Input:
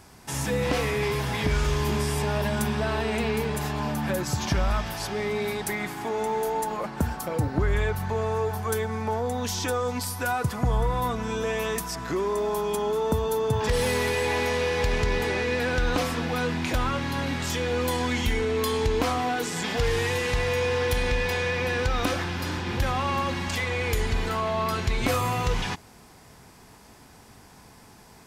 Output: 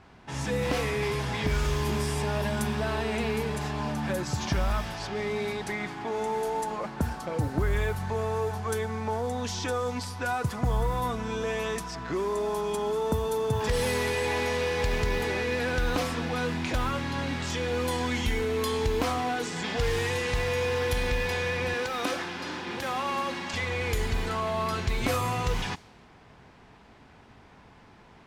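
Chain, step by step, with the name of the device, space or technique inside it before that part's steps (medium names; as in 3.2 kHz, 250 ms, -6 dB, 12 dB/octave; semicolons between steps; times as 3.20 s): cassette deck with a dynamic noise filter (white noise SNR 24 dB; level-controlled noise filter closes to 2.1 kHz, open at -20.5 dBFS); 21.74–23.54 s: high-pass 240 Hz 12 dB/octave; trim -2.5 dB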